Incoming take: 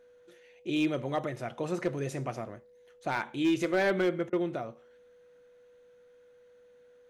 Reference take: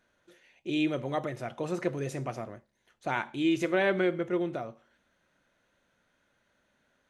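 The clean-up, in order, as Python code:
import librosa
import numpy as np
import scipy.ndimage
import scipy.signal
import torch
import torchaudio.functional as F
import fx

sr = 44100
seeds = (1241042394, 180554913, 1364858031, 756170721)

y = fx.fix_declip(x, sr, threshold_db=-20.5)
y = fx.notch(y, sr, hz=490.0, q=30.0)
y = fx.fix_interpolate(y, sr, at_s=(4.3,), length_ms=26.0)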